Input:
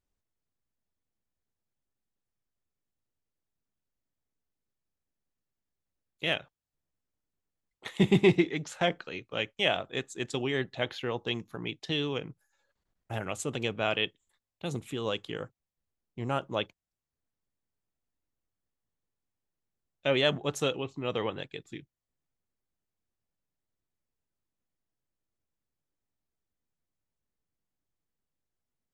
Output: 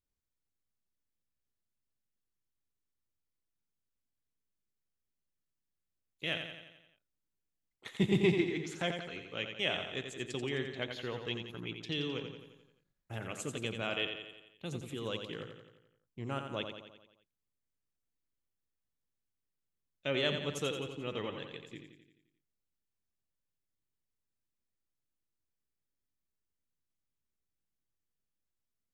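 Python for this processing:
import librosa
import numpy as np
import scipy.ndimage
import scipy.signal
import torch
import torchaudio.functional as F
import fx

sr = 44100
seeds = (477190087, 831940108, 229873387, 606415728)

y = fx.peak_eq(x, sr, hz=770.0, db=-5.5, octaves=1.0)
y = fx.echo_feedback(y, sr, ms=87, feedback_pct=56, wet_db=-7)
y = y * librosa.db_to_amplitude(-5.5)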